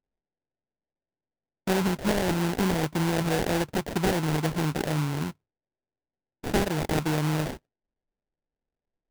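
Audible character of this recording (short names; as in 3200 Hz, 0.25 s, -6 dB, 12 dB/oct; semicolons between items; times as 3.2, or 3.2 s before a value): aliases and images of a low sample rate 1200 Hz, jitter 20%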